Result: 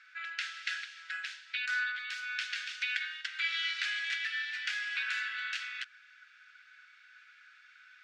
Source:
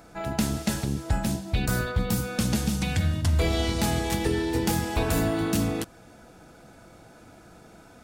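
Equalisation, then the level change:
Chebyshev high-pass filter 1,500 Hz, order 5
resonant band-pass 1,900 Hz, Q 0.65
high-frequency loss of the air 170 metres
+6.0 dB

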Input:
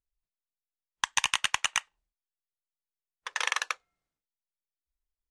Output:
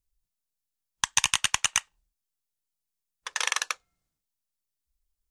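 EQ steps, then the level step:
bass and treble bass +9 dB, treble +8 dB
notch filter 2,000 Hz, Q 28
0.0 dB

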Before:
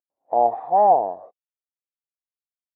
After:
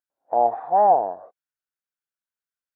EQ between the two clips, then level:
parametric band 1,500 Hz +12 dB 0.44 octaves
−1.5 dB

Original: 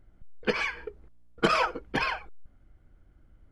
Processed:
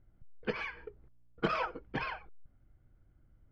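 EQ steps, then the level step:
high-frequency loss of the air 180 metres
parametric band 120 Hz +6.5 dB 0.77 octaves
−7.5 dB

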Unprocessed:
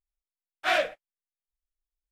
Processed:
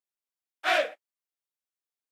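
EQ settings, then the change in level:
high-pass filter 240 Hz 24 dB per octave
0.0 dB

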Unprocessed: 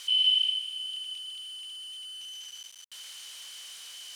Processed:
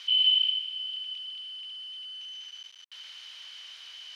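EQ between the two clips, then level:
high-pass filter 640 Hz 6 dB per octave
high-frequency loss of the air 280 metres
high-shelf EQ 2,100 Hz +9.5 dB
0.0 dB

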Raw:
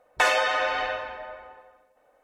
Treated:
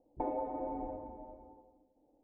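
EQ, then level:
formant resonators in series u
spectral tilt −2 dB per octave
parametric band 1,600 Hz −10 dB 2.1 octaves
+7.5 dB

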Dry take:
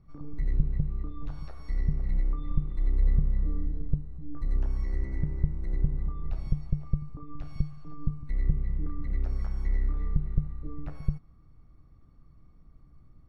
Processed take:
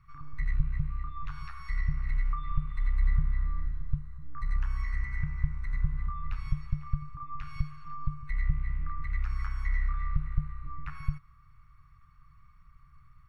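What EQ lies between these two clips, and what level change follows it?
drawn EQ curve 140 Hz 0 dB, 220 Hz −15 dB, 350 Hz −21 dB, 590 Hz −26 dB, 1,100 Hz +13 dB, 2,500 Hz +13 dB, 3,700 Hz +5 dB
−2.0 dB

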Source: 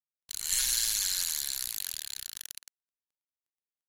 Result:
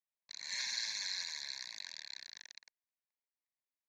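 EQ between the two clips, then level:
loudspeaker in its box 360–6,200 Hz, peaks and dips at 760 Hz −9 dB, 1,300 Hz −7 dB, 3,200 Hz −5 dB, 4,900 Hz −5 dB
high-shelf EQ 4,500 Hz −11.5 dB
phaser with its sweep stopped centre 2,000 Hz, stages 8
+4.0 dB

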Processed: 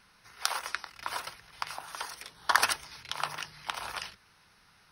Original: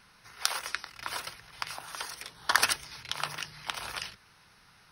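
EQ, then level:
dynamic equaliser 910 Hz, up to +6 dB, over −46 dBFS, Q 1
parametric band 130 Hz −6 dB 0.21 octaves
−2.5 dB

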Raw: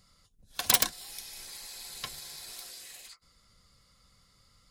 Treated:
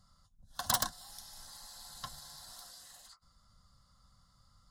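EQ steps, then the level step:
low-pass filter 3,700 Hz 6 dB per octave
phaser with its sweep stopped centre 990 Hz, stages 4
+1.0 dB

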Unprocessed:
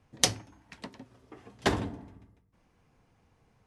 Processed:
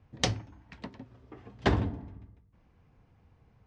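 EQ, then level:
high-frequency loss of the air 140 metres
parametric band 65 Hz +8.5 dB 2.4 octaves
0.0 dB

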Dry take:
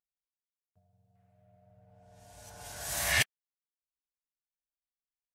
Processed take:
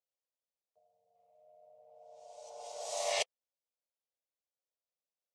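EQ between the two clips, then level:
high-pass with resonance 510 Hz, resonance Q 4.6
low-pass filter 7,400 Hz 24 dB per octave
phaser with its sweep stopped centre 670 Hz, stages 4
−2.0 dB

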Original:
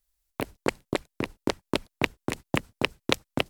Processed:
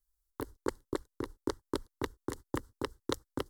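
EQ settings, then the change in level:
low-shelf EQ 310 Hz +5 dB
phaser with its sweep stopped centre 670 Hz, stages 6
−6.5 dB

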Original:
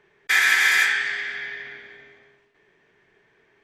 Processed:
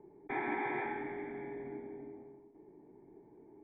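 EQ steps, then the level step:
formant resonators in series u
+17.0 dB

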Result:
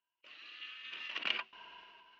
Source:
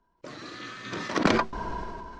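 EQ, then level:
resonant band-pass 2,800 Hz, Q 11
high-frequency loss of the air 87 metres
+8.5 dB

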